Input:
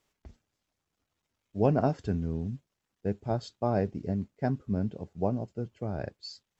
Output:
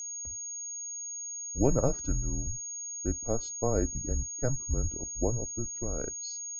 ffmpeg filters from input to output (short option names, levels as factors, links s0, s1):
-af "equalizer=f=3000:t=o:w=0.78:g=-9.5,afreqshift=-130,aeval=exprs='val(0)+0.0158*sin(2*PI*6600*n/s)':c=same"